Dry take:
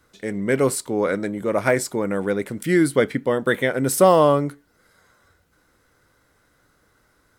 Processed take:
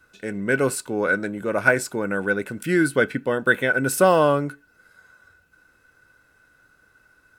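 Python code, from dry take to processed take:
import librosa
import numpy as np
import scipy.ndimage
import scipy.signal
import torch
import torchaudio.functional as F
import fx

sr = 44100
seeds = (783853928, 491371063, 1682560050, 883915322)

y = fx.small_body(x, sr, hz=(1500.0, 2600.0), ring_ms=45, db=17)
y = y * librosa.db_to_amplitude(-2.5)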